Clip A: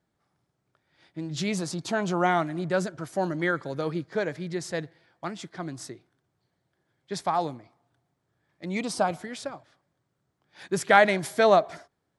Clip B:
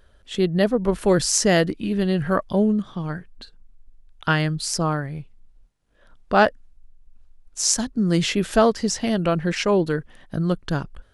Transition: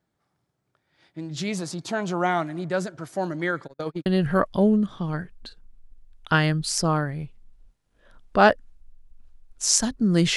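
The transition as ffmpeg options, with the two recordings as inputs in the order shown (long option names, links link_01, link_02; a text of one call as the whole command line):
ffmpeg -i cue0.wav -i cue1.wav -filter_complex "[0:a]asplit=3[link_01][link_02][link_03];[link_01]afade=type=out:start_time=3.66:duration=0.02[link_04];[link_02]agate=range=-41dB:threshold=-30dB:ratio=16:release=100:detection=peak,afade=type=in:start_time=3.66:duration=0.02,afade=type=out:start_time=4.06:duration=0.02[link_05];[link_03]afade=type=in:start_time=4.06:duration=0.02[link_06];[link_04][link_05][link_06]amix=inputs=3:normalize=0,apad=whole_dur=10.36,atrim=end=10.36,atrim=end=4.062[link_07];[1:a]atrim=start=2.018:end=8.32[link_08];[link_07][link_08]acrossfade=duration=0.004:curve1=hsin:curve2=hsin" out.wav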